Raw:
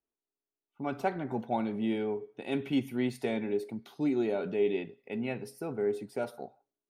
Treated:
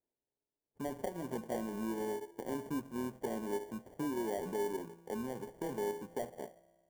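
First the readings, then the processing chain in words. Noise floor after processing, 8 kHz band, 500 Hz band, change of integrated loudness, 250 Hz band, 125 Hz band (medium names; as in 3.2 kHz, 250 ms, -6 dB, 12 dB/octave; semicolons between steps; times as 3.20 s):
under -85 dBFS, no reading, -6.0 dB, -6.5 dB, -7.0 dB, -7.5 dB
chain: bit-reversed sample order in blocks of 16 samples; compression 2.5:1, threshold -38 dBFS, peak gain reduction 10 dB; high-pass 130 Hz; treble shelf 6.9 kHz -11.5 dB; feedback comb 170 Hz, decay 1.8 s, mix 70%; sample-and-hold 34×; graphic EQ 500/2000/4000 Hz +4/-5/-11 dB; trim +10 dB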